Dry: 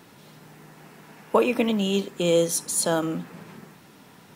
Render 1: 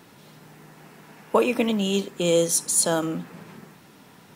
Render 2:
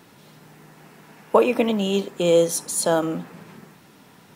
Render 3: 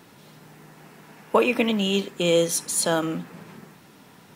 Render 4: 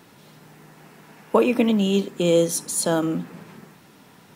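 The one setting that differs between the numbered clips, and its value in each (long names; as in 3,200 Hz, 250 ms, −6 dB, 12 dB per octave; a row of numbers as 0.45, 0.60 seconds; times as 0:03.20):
dynamic equaliser, frequency: 7,900, 660, 2,400, 250 Hertz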